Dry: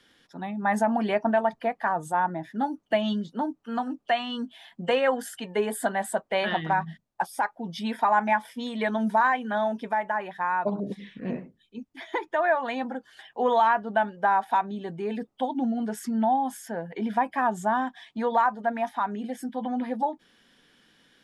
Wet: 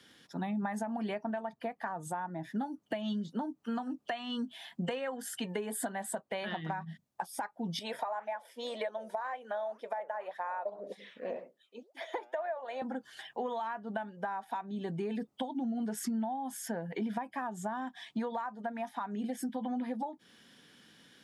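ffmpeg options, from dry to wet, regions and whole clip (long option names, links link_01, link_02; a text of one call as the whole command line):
ffmpeg -i in.wav -filter_complex "[0:a]asettb=1/sr,asplit=3[link_01][link_02][link_03];[link_01]atrim=end=7.794[link_04];[link_02]atrim=start=7.79:end=12.82,asetpts=PTS-STARTPTS,afade=type=in:duration=0.004:curve=qsin,afade=type=out:start_time=5.026:duration=0.004:curve=qsin,flanger=delay=1.4:depth=7:regen=88:speed=1.9:shape=sinusoidal,highpass=frequency=560:width_type=q:width=3.8[link_05];[link_03]atrim=start=12.816[link_06];[link_04][link_05]acrossfade=duration=0.004:curve1=hsin:curve2=qsin[link_07];[link_07][link_06]acrossfade=duration=0.004:curve1=qsin:curve2=hsin,acompressor=threshold=-34dB:ratio=10,highpass=100,bass=frequency=250:gain=5,treble=frequency=4000:gain=4" out.wav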